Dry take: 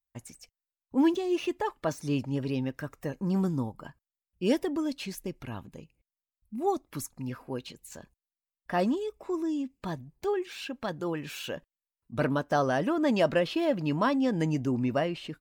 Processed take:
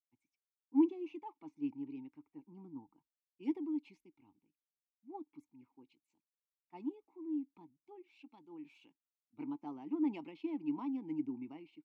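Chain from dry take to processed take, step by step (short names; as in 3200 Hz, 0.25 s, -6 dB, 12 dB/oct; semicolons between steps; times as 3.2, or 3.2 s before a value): tempo 1.3×; vowel filter u; three-band expander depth 70%; gain -6 dB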